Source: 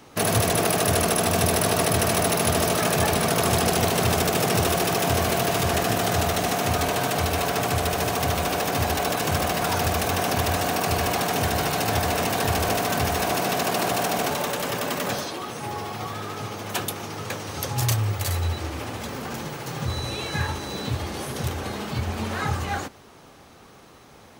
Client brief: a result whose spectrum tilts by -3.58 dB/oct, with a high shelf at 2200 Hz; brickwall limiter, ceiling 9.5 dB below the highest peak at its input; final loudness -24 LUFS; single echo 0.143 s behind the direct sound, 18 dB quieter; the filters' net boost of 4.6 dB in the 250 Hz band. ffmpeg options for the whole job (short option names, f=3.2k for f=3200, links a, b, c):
-af "equalizer=f=250:t=o:g=6,highshelf=f=2.2k:g=5.5,alimiter=limit=-13.5dB:level=0:latency=1,aecho=1:1:143:0.126"